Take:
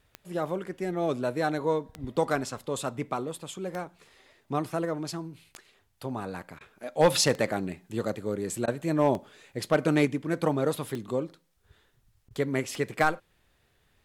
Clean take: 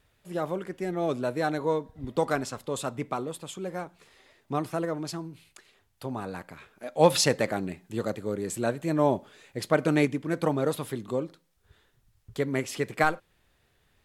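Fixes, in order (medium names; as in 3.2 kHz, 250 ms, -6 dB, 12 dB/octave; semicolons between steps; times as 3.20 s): clip repair -12.5 dBFS; de-click; interpolate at 6.59/8.66/12.29 s, 15 ms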